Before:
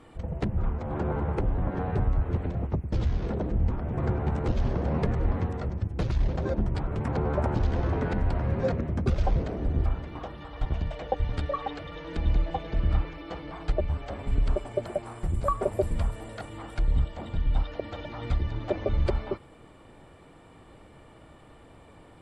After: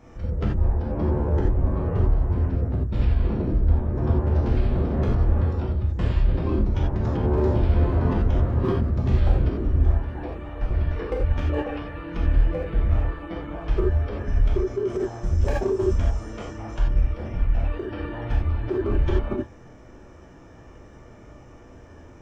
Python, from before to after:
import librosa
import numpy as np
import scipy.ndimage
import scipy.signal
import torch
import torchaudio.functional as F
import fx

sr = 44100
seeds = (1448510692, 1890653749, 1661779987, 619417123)

y = np.clip(x, -10.0 ** (-20.5 / 20.0), 10.0 ** (-20.5 / 20.0))
y = fx.rev_gated(y, sr, seeds[0], gate_ms=110, shape='flat', drr_db=-3.5)
y = fx.formant_shift(y, sr, semitones=-6)